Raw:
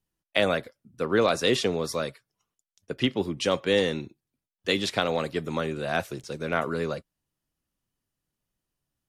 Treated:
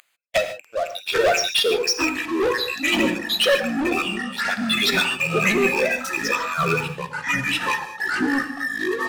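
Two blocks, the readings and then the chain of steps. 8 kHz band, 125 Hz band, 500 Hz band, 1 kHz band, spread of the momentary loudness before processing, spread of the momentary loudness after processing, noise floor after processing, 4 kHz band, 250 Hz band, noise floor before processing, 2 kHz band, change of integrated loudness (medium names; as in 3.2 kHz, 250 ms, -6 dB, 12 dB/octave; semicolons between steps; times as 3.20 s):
+11.0 dB, +2.0 dB, +4.0 dB, +7.5 dB, 11 LU, 7 LU, -47 dBFS, +9.0 dB, +6.0 dB, under -85 dBFS, +12.0 dB, +6.0 dB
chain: rattle on loud lows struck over -35 dBFS, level -19 dBFS; spectral gate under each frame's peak -10 dB strong; dynamic bell 2.9 kHz, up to +4 dB, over -44 dBFS, Q 1.5; compression 2:1, threshold -33 dBFS, peak gain reduction 7.5 dB; reverse echo 488 ms -15 dB; LFO high-pass sine 2.2 Hz 590–6300 Hz; waveshaping leveller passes 5; gated-style reverb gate 170 ms flat, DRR 7.5 dB; ever faster or slower copies 645 ms, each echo -6 st, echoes 3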